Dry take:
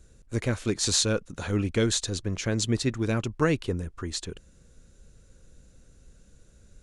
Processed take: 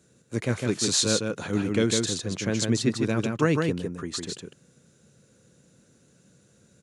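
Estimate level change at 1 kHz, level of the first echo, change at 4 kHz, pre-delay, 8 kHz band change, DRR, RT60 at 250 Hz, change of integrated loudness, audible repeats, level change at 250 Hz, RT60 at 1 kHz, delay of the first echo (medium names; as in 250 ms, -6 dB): +1.5 dB, -4.0 dB, +1.5 dB, no reverb, +1.5 dB, no reverb, no reverb, +1.5 dB, 1, +3.0 dB, no reverb, 155 ms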